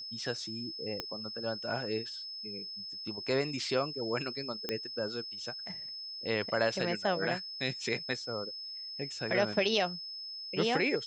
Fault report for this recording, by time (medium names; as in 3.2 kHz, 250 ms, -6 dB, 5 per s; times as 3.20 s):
whine 5.2 kHz -40 dBFS
1.00 s: pop -19 dBFS
4.69 s: pop -18 dBFS